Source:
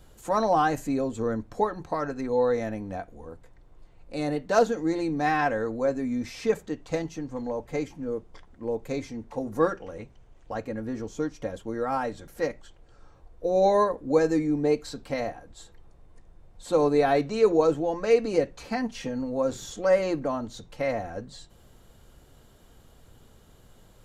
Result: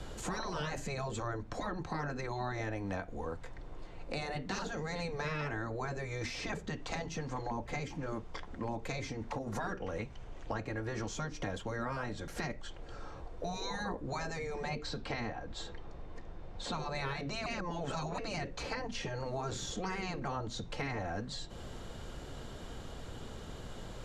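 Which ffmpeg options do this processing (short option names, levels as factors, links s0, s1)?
-filter_complex "[0:a]asettb=1/sr,asplit=3[s0][s1][s2];[s0]atrim=end=9.114[s3];[s1]atrim=start=9.11:end=9.56,asetpts=PTS-STARTPTS,afade=t=in:d=0.004:c=qsin,afade=t=out:st=0.446:d=0.004:c=qsin,acompressor=threshold=0.02:ratio=6:attack=3.2:release=140:knee=1:detection=peak[s4];[s2]atrim=start=9.556[s5];[s3][s4]acrossfade=d=0.004:c1=hsin:c2=qsin[s6];[s6][s5]acrossfade=d=0.004:c1=qsin:c2=hsin,asettb=1/sr,asplit=3[s7][s8][s9];[s7]atrim=end=14.694[s10];[s8]atrim=start=14.69:end=16.95,asetpts=PTS-STARTPTS,afade=t=in:d=0.004:c=qsin,afade=t=out:st=2.256:d=0.004:c=qsin,lowpass=5700[s11];[s9]atrim=start=16.946[s12];[s10][s11]acrossfade=d=0.004:c1=hsin:c2=qsin[s13];[s13][s12]acrossfade=d=0.004:c1=qsin:c2=hsin,asplit=3[s14][s15][s16];[s14]atrim=end=17.462[s17];[s15]atrim=start=17.458:end=18.182,asetpts=PTS-STARTPTS,areverse[s18];[s16]atrim=start=18.178[s19];[s17][s18]acrossfade=d=0.004:c1=hsin:c2=hsin[s20];[s20][s19]acrossfade=d=0.004:c1=hsin:c2=hsin,afftfilt=real='re*lt(hypot(re,im),0.141)':imag='im*lt(hypot(re,im),0.141)':win_size=1024:overlap=0.75,lowpass=6400,acrossover=split=190|710[s21][s22][s23];[s21]acompressor=threshold=0.00224:ratio=4[s24];[s22]acompressor=threshold=0.00178:ratio=4[s25];[s23]acompressor=threshold=0.00224:ratio=4[s26];[s24][s25][s26]amix=inputs=3:normalize=0,volume=3.55"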